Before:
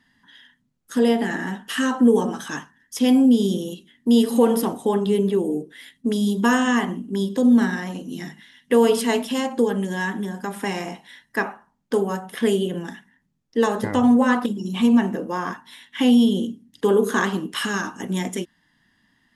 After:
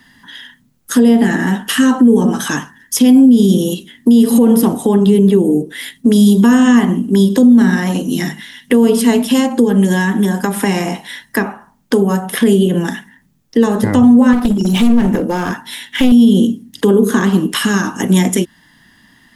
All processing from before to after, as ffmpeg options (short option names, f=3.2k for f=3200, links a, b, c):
-filter_complex "[0:a]asettb=1/sr,asplit=3[a][b][c];[a]atrim=end=14.334[d];[b]atrim=start=14.33:end=16.12,asetpts=PTS-STARTPTS,afade=t=in:d=0.004:c=qsin,afade=t=out:st=1.786:d=0.004:c=qsin,bandreject=f=1.1k:w=6.6,aeval=exprs='clip(val(0),-1,0.0531)':c=same[e];[c]atrim=start=16.116[f];[d][e]acrossfade=d=0.004:c1=hsin:c2=qsin[g];[g][f]acrossfade=d=0.004:c1=qsin:c2=hsin,acrossover=split=300[h][i];[i]acompressor=threshold=-33dB:ratio=4[j];[h][j]amix=inputs=2:normalize=0,highshelf=f=10k:g=10,alimiter=level_in=16dB:limit=-1dB:release=50:level=0:latency=1,volume=-1dB"